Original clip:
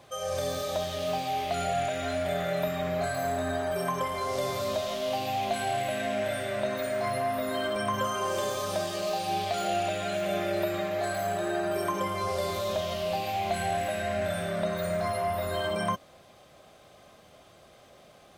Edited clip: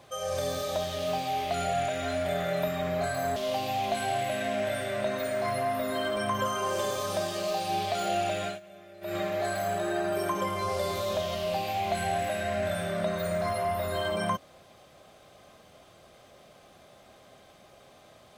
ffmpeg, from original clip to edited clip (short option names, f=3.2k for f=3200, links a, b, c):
-filter_complex "[0:a]asplit=4[a][b][c][d];[a]atrim=end=3.362[e];[b]atrim=start=4.948:end=10.19,asetpts=PTS-STARTPTS,afade=t=out:st=5.092:d=0.15:silence=0.0944061[f];[c]atrim=start=10.19:end=10.6,asetpts=PTS-STARTPTS,volume=-20.5dB[g];[d]atrim=start=10.6,asetpts=PTS-STARTPTS,afade=t=in:d=0.15:silence=0.0944061[h];[f][g][h]concat=n=3:v=0:a=1[i];[e][i]acrossfade=d=0.004:c1=hsin:c2=hsin"